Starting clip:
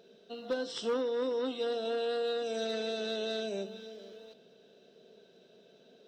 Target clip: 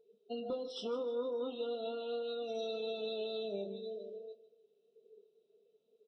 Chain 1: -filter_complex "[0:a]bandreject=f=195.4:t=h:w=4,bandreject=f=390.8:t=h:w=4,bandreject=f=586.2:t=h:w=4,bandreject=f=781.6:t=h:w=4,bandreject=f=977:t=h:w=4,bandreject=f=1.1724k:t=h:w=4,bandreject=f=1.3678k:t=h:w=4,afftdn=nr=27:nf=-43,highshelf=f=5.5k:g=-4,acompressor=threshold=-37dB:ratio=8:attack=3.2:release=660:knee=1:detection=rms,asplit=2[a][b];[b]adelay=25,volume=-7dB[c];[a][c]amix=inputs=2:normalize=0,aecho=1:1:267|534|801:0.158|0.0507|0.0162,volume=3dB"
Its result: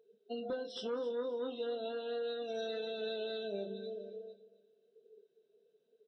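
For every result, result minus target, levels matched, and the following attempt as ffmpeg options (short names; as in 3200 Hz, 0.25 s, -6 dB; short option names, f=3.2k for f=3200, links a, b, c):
echo 0.113 s late; 2000 Hz band +5.5 dB
-filter_complex "[0:a]bandreject=f=195.4:t=h:w=4,bandreject=f=390.8:t=h:w=4,bandreject=f=586.2:t=h:w=4,bandreject=f=781.6:t=h:w=4,bandreject=f=977:t=h:w=4,bandreject=f=1.1724k:t=h:w=4,bandreject=f=1.3678k:t=h:w=4,afftdn=nr=27:nf=-43,highshelf=f=5.5k:g=-4,acompressor=threshold=-37dB:ratio=8:attack=3.2:release=660:knee=1:detection=rms,asplit=2[a][b];[b]adelay=25,volume=-7dB[c];[a][c]amix=inputs=2:normalize=0,aecho=1:1:154|308|462:0.158|0.0507|0.0162,volume=3dB"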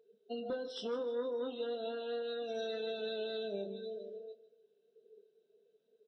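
2000 Hz band +5.5 dB
-filter_complex "[0:a]bandreject=f=195.4:t=h:w=4,bandreject=f=390.8:t=h:w=4,bandreject=f=586.2:t=h:w=4,bandreject=f=781.6:t=h:w=4,bandreject=f=977:t=h:w=4,bandreject=f=1.1724k:t=h:w=4,bandreject=f=1.3678k:t=h:w=4,afftdn=nr=27:nf=-43,highshelf=f=5.5k:g=-4,acompressor=threshold=-37dB:ratio=8:attack=3.2:release=660:knee=1:detection=rms,asuperstop=centerf=1800:order=20:qfactor=2.2,asplit=2[a][b];[b]adelay=25,volume=-7dB[c];[a][c]amix=inputs=2:normalize=0,aecho=1:1:154|308|462:0.158|0.0507|0.0162,volume=3dB"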